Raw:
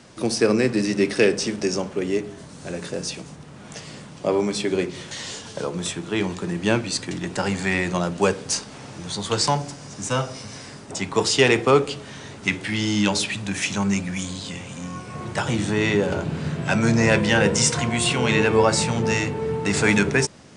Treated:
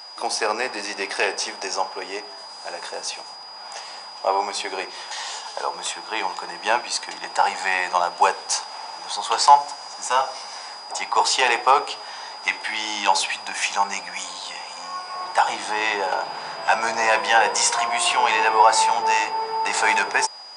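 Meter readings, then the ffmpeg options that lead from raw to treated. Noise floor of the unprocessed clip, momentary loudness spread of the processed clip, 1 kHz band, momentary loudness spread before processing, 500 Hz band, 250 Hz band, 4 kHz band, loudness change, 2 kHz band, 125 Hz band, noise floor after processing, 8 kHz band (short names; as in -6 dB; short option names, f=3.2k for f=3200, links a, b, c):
-42 dBFS, 15 LU, +10.5 dB, 16 LU, -5.5 dB, -18.5 dB, +1.5 dB, +0.5 dB, +1.5 dB, under -25 dB, -39 dBFS, +0.5 dB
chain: -af "apsyclip=11dB,aeval=exprs='val(0)+0.0398*sin(2*PI*4900*n/s)':c=same,highpass=f=840:t=q:w=4.9,volume=-10.5dB"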